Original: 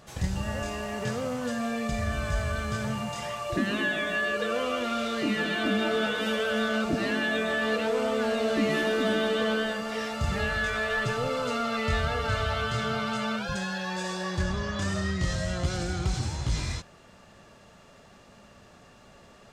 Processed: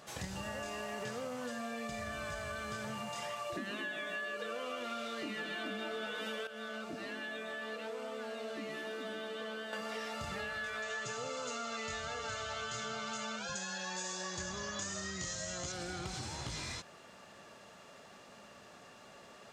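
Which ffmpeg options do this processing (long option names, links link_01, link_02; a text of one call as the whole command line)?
ffmpeg -i in.wav -filter_complex "[0:a]asettb=1/sr,asplit=3[link_01][link_02][link_03];[link_01]atrim=end=10.824[link_04];[link_02]atrim=start=10.82:end=15.72,asetpts=PTS-STARTPTS,afade=type=in:duration=0.004:curve=qsin,afade=type=out:start_time=4.896:duration=0.004:curve=qsin,lowpass=frequency=6800:width_type=q:width=5.3[link_05];[link_03]atrim=start=15.716[link_06];[link_04][link_05]acrossfade=duration=0.004:curve1=hsin:curve2=qsin[link_07];[link_07][link_06]acrossfade=duration=0.004:curve1=qsin:curve2=hsin,asplit=3[link_08][link_09][link_10];[link_08]atrim=end=6.472[link_11];[link_09]atrim=start=6.468:end=9.732,asetpts=PTS-STARTPTS,volume=-11.5dB[link_12];[link_10]atrim=start=9.728[link_13];[link_11][link_12]acrossfade=duration=0.004:curve1=hsin:curve2=hsin[link_14];[link_14][link_13]acrossfade=duration=0.004:curve1=hsin:curve2=hsin,highpass=frequency=340:poles=1,acompressor=threshold=-38dB:ratio=6" out.wav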